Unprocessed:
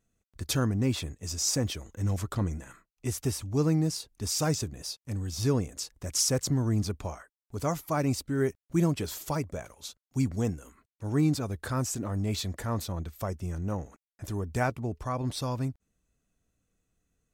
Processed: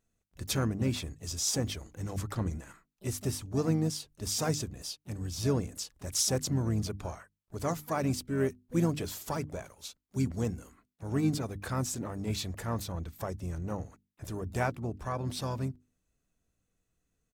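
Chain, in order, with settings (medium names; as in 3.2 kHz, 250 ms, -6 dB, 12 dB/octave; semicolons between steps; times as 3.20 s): hum notches 50/100/150/200/250/300 Hz; harmony voices -7 st -15 dB, +7 st -15 dB; trim -2.5 dB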